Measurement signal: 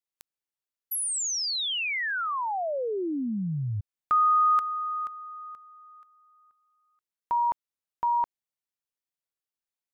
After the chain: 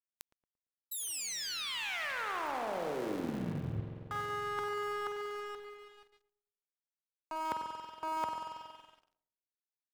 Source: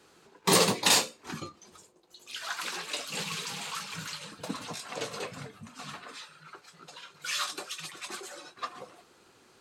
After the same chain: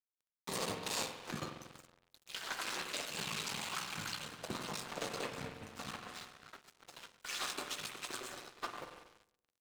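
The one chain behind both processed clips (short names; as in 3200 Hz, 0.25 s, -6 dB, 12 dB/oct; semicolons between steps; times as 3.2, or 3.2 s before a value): cycle switcher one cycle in 3, muted; HPF 70 Hz 24 dB/oct; reverse; compressor 12:1, threshold -35 dBFS; reverse; spring tank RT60 2.6 s, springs 46 ms, chirp 50 ms, DRR 2.5 dB; crossover distortion -48.5 dBFS; on a send: darkening echo 0.114 s, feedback 38%, low-pass 1000 Hz, level -13.5 dB; on the sum: gain +1 dB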